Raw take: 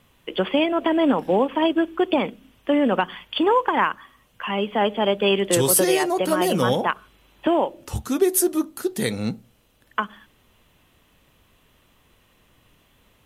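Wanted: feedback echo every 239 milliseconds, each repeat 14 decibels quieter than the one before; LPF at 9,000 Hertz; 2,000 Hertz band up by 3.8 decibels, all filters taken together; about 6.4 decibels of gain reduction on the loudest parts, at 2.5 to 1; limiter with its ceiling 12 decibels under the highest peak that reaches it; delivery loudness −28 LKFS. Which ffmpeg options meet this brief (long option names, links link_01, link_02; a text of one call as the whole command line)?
ffmpeg -i in.wav -af "lowpass=9000,equalizer=frequency=2000:width_type=o:gain=5,acompressor=threshold=-24dB:ratio=2.5,alimiter=limit=-20dB:level=0:latency=1,aecho=1:1:239|478:0.2|0.0399,volume=2dB" out.wav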